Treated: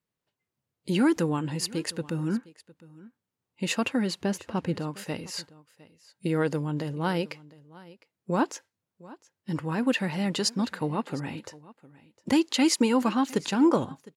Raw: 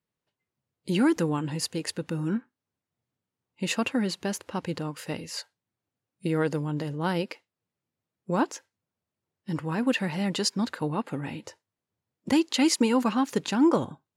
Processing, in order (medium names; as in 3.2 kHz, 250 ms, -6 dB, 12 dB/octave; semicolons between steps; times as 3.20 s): 4.21–4.79 s: tilt EQ -1.5 dB/octave; on a send: delay 708 ms -21 dB